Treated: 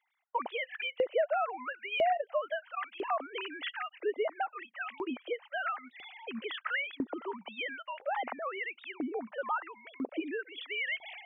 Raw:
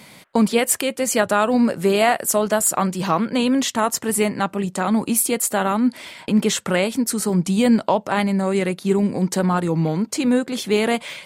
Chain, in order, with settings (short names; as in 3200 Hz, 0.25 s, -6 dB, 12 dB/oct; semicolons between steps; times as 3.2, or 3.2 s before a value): sine-wave speech; gate with hold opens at -41 dBFS; LFO high-pass saw up 1 Hz 390–2600 Hz; compressor 2:1, threshold -24 dBFS, peak gain reduction 9 dB; gain -8 dB